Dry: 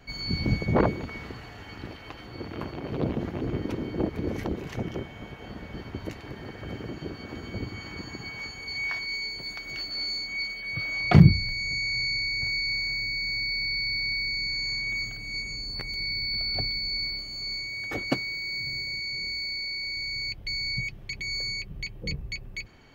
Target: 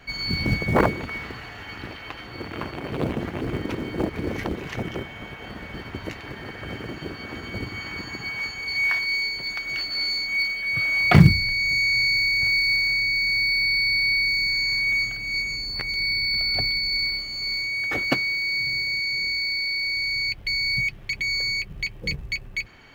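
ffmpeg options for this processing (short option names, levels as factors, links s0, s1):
-filter_complex "[0:a]equalizer=f=2000:t=o:w=2.4:g=7.5,asplit=2[s0][s1];[s1]acrusher=bits=3:mode=log:mix=0:aa=0.000001,volume=0.282[s2];[s0][s2]amix=inputs=2:normalize=0,volume=0.891"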